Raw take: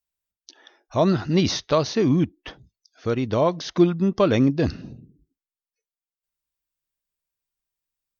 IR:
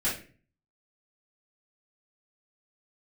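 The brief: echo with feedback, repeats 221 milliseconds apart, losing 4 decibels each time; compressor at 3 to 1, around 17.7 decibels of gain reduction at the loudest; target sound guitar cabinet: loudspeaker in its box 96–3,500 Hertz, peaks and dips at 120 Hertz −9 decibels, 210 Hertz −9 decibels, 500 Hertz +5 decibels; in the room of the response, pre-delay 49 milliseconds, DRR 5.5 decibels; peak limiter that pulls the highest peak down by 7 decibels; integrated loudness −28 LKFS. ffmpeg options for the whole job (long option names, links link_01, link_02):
-filter_complex "[0:a]acompressor=threshold=-36dB:ratio=3,alimiter=level_in=4dB:limit=-24dB:level=0:latency=1,volume=-4dB,aecho=1:1:221|442|663|884|1105|1326|1547|1768|1989:0.631|0.398|0.25|0.158|0.0994|0.0626|0.0394|0.0249|0.0157,asplit=2[link_01][link_02];[1:a]atrim=start_sample=2205,adelay=49[link_03];[link_02][link_03]afir=irnorm=-1:irlink=0,volume=-14dB[link_04];[link_01][link_04]amix=inputs=2:normalize=0,highpass=96,equalizer=frequency=120:width_type=q:width=4:gain=-9,equalizer=frequency=210:width_type=q:width=4:gain=-9,equalizer=frequency=500:width_type=q:width=4:gain=5,lowpass=frequency=3500:width=0.5412,lowpass=frequency=3500:width=1.3066,volume=8.5dB"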